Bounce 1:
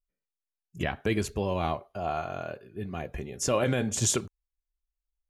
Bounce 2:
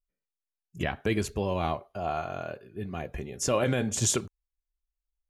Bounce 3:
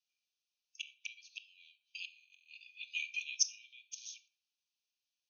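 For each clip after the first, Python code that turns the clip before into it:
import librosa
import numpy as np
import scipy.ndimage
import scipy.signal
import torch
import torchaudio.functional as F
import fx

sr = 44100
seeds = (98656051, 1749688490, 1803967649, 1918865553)

y1 = x
y2 = fx.gate_flip(y1, sr, shuts_db=-21.0, range_db=-28)
y2 = fx.brickwall_bandpass(y2, sr, low_hz=2300.0, high_hz=6600.0)
y2 = fx.room_shoebox(y2, sr, seeds[0], volume_m3=690.0, walls='furnished', distance_m=0.67)
y2 = F.gain(torch.from_numpy(y2), 11.0).numpy()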